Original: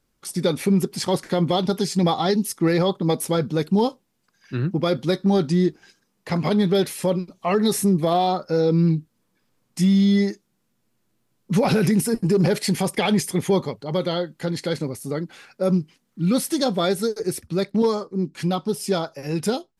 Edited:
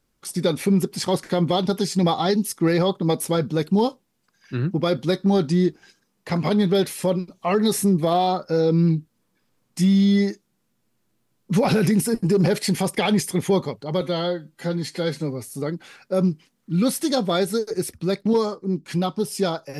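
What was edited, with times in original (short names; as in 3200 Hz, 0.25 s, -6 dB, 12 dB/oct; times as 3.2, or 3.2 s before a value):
14.01–15.03 stretch 1.5×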